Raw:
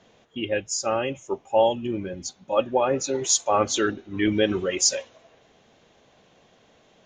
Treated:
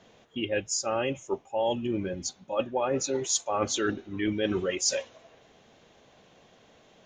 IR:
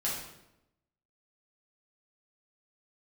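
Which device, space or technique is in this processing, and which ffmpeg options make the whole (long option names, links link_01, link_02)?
compression on the reversed sound: -af "areverse,acompressor=threshold=-24dB:ratio=6,areverse"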